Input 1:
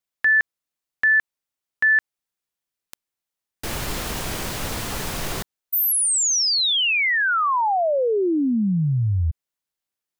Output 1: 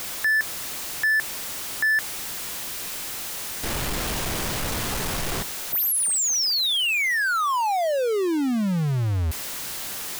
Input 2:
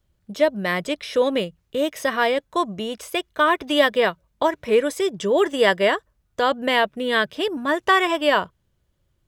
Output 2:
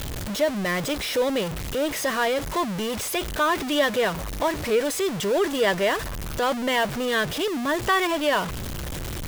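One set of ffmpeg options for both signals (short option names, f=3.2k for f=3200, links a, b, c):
-af "aeval=exprs='val(0)+0.5*0.119*sgn(val(0))':c=same,volume=-6.5dB"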